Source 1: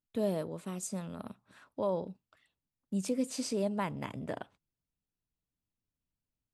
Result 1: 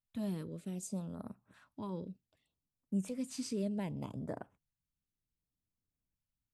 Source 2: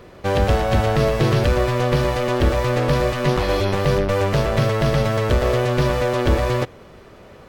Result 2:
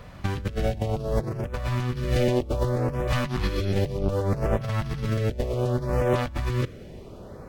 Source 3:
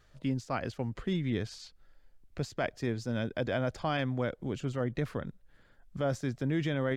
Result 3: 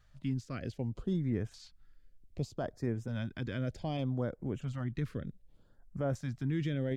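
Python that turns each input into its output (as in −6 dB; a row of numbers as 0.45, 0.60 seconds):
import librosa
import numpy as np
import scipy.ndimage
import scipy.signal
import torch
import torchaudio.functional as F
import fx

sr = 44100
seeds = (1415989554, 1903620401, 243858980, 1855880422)

y = fx.low_shelf(x, sr, hz=410.0, db=6.0)
y = fx.over_compress(y, sr, threshold_db=-18.0, ratio=-0.5)
y = fx.filter_lfo_notch(y, sr, shape='saw_up', hz=0.65, low_hz=320.0, high_hz=4900.0, q=0.75)
y = F.gain(torch.from_numpy(y), -5.5).numpy()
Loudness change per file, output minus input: −4.5, −7.5, −3.0 LU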